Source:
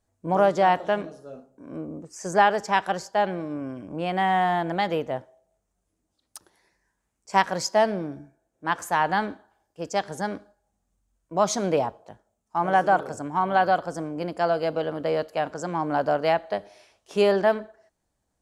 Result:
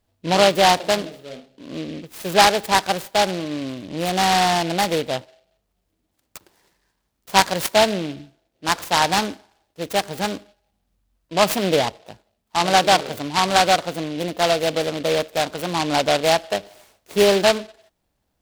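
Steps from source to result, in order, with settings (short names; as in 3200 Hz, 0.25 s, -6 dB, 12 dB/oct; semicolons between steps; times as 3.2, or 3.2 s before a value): noise-modulated delay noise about 2800 Hz, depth 0.1 ms; gain +4.5 dB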